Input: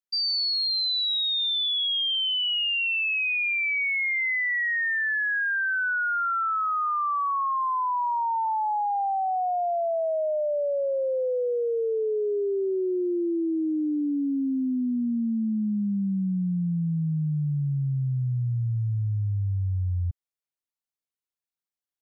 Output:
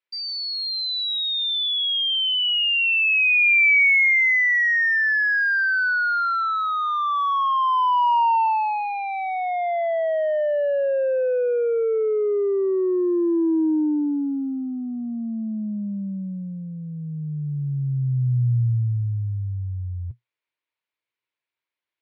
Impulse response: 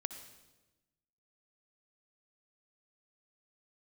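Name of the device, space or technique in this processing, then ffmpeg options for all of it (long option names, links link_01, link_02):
overdrive pedal into a guitar cabinet: -filter_complex "[0:a]asplit=2[link_01][link_02];[link_02]highpass=frequency=720:poles=1,volume=9dB,asoftclip=type=tanh:threshold=-22.5dB[link_03];[link_01][link_03]amix=inputs=2:normalize=0,lowpass=frequency=2600:poles=1,volume=-6dB,highpass=110,equalizer=frequency=120:width_type=q:width=4:gain=9,equalizer=frequency=170:width_type=q:width=4:gain=-9,equalizer=frequency=250:width_type=q:width=4:gain=-6,equalizer=frequency=910:width_type=q:width=4:gain=7,equalizer=frequency=2300:width_type=q:width=4:gain=6,lowpass=frequency=4200:width=0.5412,lowpass=frequency=4200:width=1.3066,equalizer=frequency=315:width_type=o:width=0.33:gain=4,equalizer=frequency=800:width_type=o:width=0.33:gain=-11,equalizer=frequency=1250:width_type=o:width=0.33:gain=-4,volume=6dB"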